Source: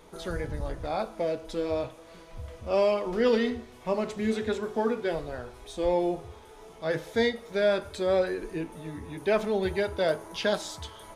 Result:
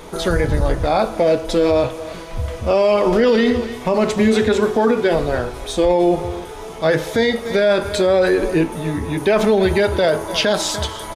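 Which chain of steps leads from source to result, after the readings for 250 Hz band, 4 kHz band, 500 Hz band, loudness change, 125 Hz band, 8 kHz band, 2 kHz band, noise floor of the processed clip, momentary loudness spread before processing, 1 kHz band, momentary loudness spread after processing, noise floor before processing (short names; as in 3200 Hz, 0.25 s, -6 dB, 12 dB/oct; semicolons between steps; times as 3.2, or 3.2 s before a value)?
+13.0 dB, +13.0 dB, +11.5 dB, +11.5 dB, +15.0 dB, +16.0 dB, +11.5 dB, -32 dBFS, 13 LU, +12.0 dB, 9 LU, -50 dBFS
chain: echo 0.293 s -19 dB; maximiser +22.5 dB; gain -6 dB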